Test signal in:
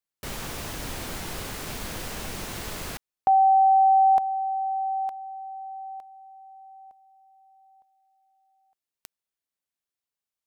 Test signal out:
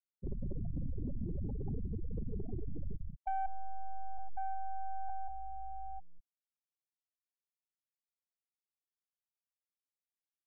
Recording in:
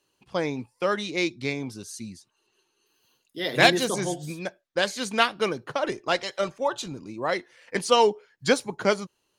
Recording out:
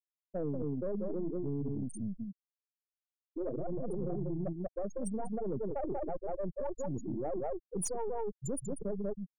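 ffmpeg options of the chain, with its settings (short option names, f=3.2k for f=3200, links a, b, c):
-filter_complex "[0:a]aeval=exprs='if(lt(val(0),0),0.447*val(0),val(0))':c=same,bandreject=f=4.1k:w=12,asplit=2[a][b];[b]alimiter=limit=-16dB:level=0:latency=1:release=141,volume=0dB[c];[a][c]amix=inputs=2:normalize=0,acrossover=split=160[d][e];[e]acompressor=threshold=-23dB:ratio=2:attack=20:release=553:knee=2.83:detection=peak[f];[d][f]amix=inputs=2:normalize=0,firequalizer=gain_entry='entry(100,0);entry(830,-5);entry(1500,-25);entry(6400,-17)':delay=0.05:min_phase=1,aecho=1:1:190:0.596,areverse,acompressor=threshold=-31dB:ratio=16:attack=7.8:release=34:knee=1:detection=rms,areverse,crystalizer=i=8:c=0,aeval=exprs='val(0)+0.00112*(sin(2*PI*50*n/s)+sin(2*PI*2*50*n/s)/2+sin(2*PI*3*50*n/s)/3+sin(2*PI*4*50*n/s)/4+sin(2*PI*5*50*n/s)/5)':c=same,afftfilt=real='re*gte(hypot(re,im),0.0794)':imag='im*gte(hypot(re,im),0.0794)':win_size=1024:overlap=0.75,asoftclip=type=tanh:threshold=-26.5dB"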